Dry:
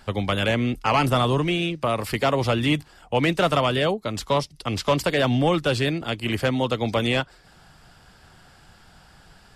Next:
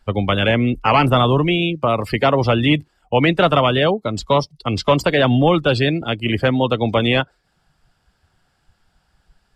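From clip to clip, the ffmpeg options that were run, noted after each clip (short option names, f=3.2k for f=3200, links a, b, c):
-af "afftdn=nr=19:nf=-33,volume=6dB"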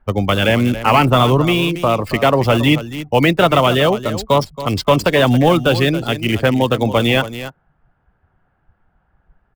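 -filter_complex "[0:a]aecho=1:1:276:0.224,acrossover=split=2000[a][b];[b]acrusher=bits=6:dc=4:mix=0:aa=0.000001[c];[a][c]amix=inputs=2:normalize=0,volume=2dB"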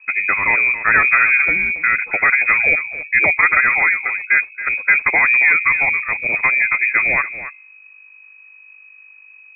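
-af "bandreject=f=101.9:t=h:w=4,bandreject=f=203.8:t=h:w=4,bandreject=f=305.7:t=h:w=4,bandreject=f=407.6:t=h:w=4,bandreject=f=509.5:t=h:w=4,aeval=exprs='val(0)+0.00794*(sin(2*PI*50*n/s)+sin(2*PI*2*50*n/s)/2+sin(2*PI*3*50*n/s)/3+sin(2*PI*4*50*n/s)/4+sin(2*PI*5*50*n/s)/5)':c=same,lowpass=f=2.2k:t=q:w=0.5098,lowpass=f=2.2k:t=q:w=0.6013,lowpass=f=2.2k:t=q:w=0.9,lowpass=f=2.2k:t=q:w=2.563,afreqshift=-2600,volume=-1dB"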